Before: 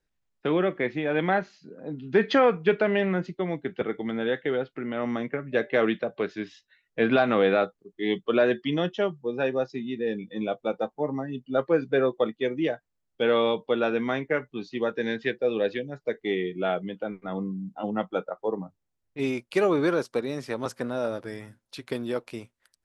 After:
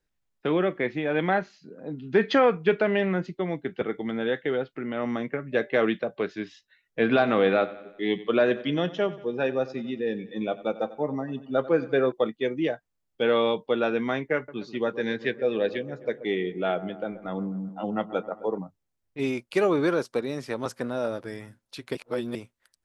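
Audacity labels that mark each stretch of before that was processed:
6.990000	12.120000	feedback delay 92 ms, feedback 54%, level -17 dB
14.350000	18.580000	feedback echo behind a low-pass 130 ms, feedback 56%, low-pass 1.3 kHz, level -14 dB
21.950000	22.350000	reverse

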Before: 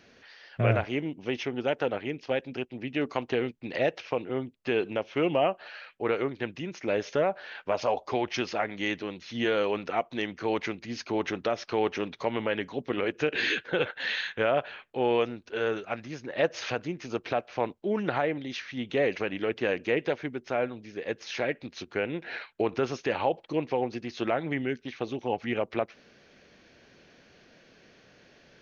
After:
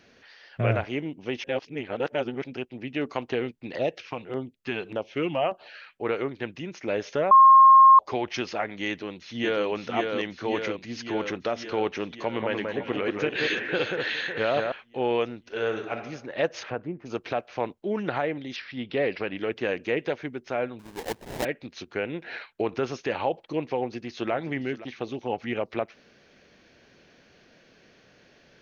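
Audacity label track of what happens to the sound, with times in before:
1.440000	2.440000	reverse
3.750000	5.960000	LFO notch saw down 1.7 Hz 200–2700 Hz
7.310000	7.990000	bleep 1.07 kHz -9.5 dBFS
8.880000	9.660000	echo throw 550 ms, feedback 70%, level -4 dB
12.160000	14.720000	echo whose repeats swap between lows and highs 184 ms, split 2.1 kHz, feedback 64%, level -3.5 dB
15.400000	15.950000	reverb throw, RT60 0.95 s, DRR 5 dB
16.620000	17.050000	low-pass 1.8 kHz -> 1 kHz
18.560000	19.380000	careless resampling rate divided by 4×, down none, up filtered
20.790000	21.450000	sample-rate reducer 1.3 kHz, jitter 20%
23.800000	24.320000	echo throw 520 ms, feedback 30%, level -15 dB

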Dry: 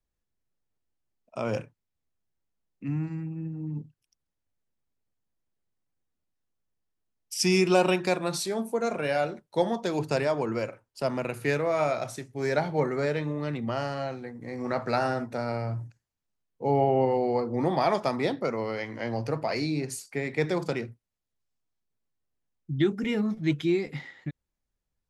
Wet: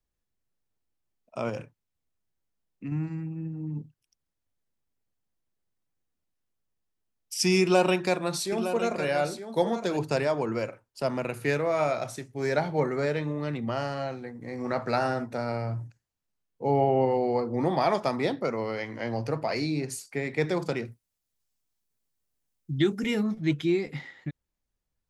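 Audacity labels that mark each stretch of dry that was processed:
1.490000	2.920000	compression 4:1, threshold -30 dBFS
7.610000	9.970000	delay 911 ms -10 dB
20.850000	23.230000	treble shelf 4.4 kHz +10.5 dB

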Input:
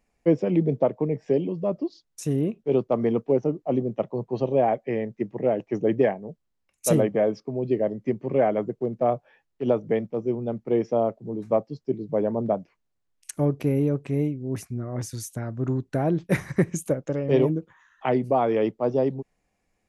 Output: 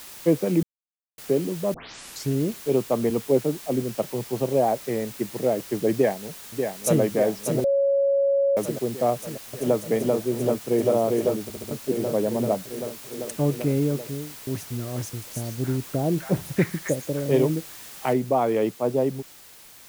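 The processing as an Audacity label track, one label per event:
0.630000	1.180000	mute
1.740000	1.740000	tape start 0.59 s
3.100000	3.960000	three bands expanded up and down depth 70%
4.580000	5.190000	low-pass 1.6 kHz -> 3.1 kHz
5.930000	7.010000	echo throw 590 ms, feedback 70%, level -6 dB
7.640000	8.570000	bleep 555 Hz -17.5 dBFS
9.140000	9.800000	echo throw 390 ms, feedback 85%, level -1.5 dB
10.440000	10.880000	echo throw 400 ms, feedback 70%, level -2 dB
11.430000	11.430000	stutter in place 0.07 s, 4 plays
13.790000	14.470000	studio fade out
15.090000	17.260000	three bands offset in time lows, highs, mids 130/270 ms, splits 1/5.1 kHz
18.130000	18.130000	noise floor step -42 dB -48 dB

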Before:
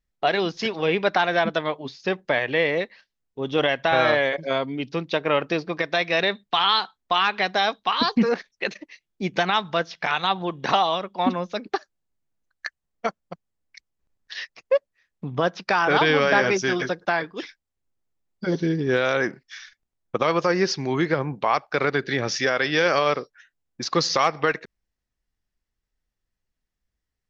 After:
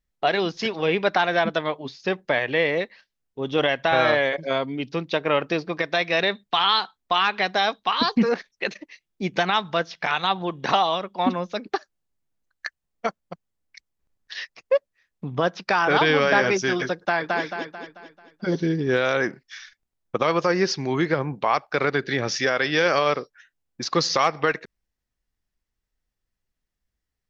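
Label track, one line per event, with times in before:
16.980000	17.420000	echo throw 220 ms, feedback 45%, level -2 dB

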